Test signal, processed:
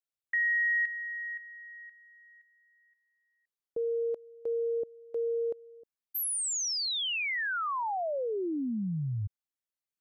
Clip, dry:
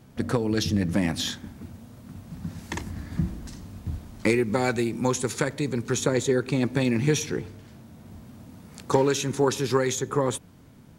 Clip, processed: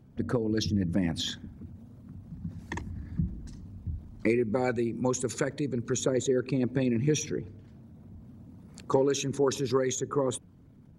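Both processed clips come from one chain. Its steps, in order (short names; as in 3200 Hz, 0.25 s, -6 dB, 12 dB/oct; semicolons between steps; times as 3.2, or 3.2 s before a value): formant sharpening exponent 1.5; gain -3.5 dB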